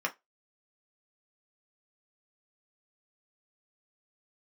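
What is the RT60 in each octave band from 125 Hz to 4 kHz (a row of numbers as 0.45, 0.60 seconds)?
0.10, 0.15, 0.20, 0.20, 0.15, 0.15 seconds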